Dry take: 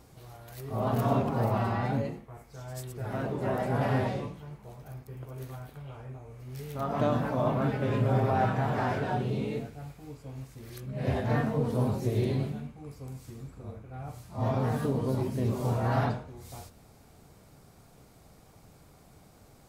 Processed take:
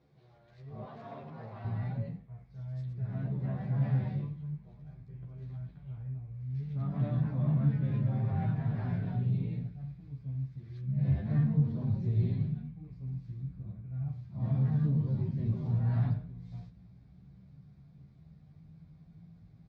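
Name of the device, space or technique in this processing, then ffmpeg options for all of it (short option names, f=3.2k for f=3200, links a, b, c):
barber-pole flanger into a guitar amplifier: -filter_complex "[0:a]asplit=2[a][b];[b]adelay=11.6,afreqshift=0.28[c];[a][c]amix=inputs=2:normalize=1,asoftclip=type=tanh:threshold=-22.5dB,highpass=83,equalizer=f=88:t=q:w=4:g=-7,equalizer=f=170:t=q:w=4:g=9,equalizer=f=240:t=q:w=4:g=-4,equalizer=f=890:t=q:w=4:g=-5,equalizer=f=1.3k:t=q:w=4:g=-6,equalizer=f=2.9k:t=q:w=4:g=-7,lowpass=f=4.1k:w=0.5412,lowpass=f=4.1k:w=1.3066,asubboost=boost=11:cutoff=140,asettb=1/sr,asplit=3[d][e][f];[d]atrim=end=0.854[g];[e]atrim=start=0.85:end=1.65,asetpts=PTS-STARTPTS,afade=t=in:d=0.004:c=qsin,afade=t=out:st=0.796:d=0.004:c=qsin,highpass=f=520:p=1[h];[f]atrim=start=1.646[i];[g][h]acrossfade=d=0.004:c1=hsin:c2=qsin[j];[j][i]acrossfade=d=0.004:c1=qsin:c2=hsin,volume=-8dB"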